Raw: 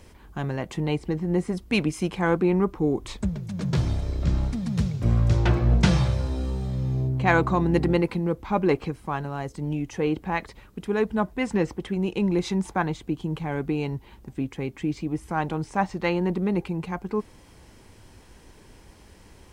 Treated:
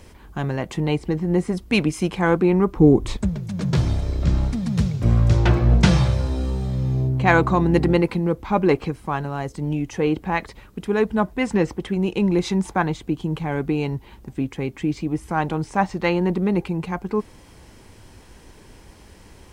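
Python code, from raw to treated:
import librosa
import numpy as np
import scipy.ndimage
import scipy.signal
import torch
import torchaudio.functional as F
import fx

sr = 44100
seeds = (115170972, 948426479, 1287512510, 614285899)

y = fx.low_shelf(x, sr, hz=470.0, db=9.5, at=(2.76, 3.17))
y = y * librosa.db_to_amplitude(4.0)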